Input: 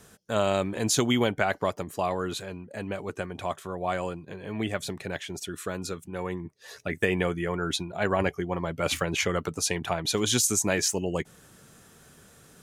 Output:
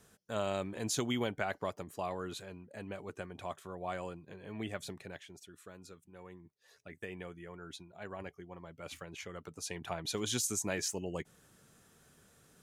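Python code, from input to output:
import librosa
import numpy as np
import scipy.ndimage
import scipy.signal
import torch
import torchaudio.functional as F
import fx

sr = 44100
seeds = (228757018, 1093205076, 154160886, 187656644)

y = fx.gain(x, sr, db=fx.line((4.91, -10.0), (5.47, -19.0), (9.29, -19.0), (9.95, -10.0)))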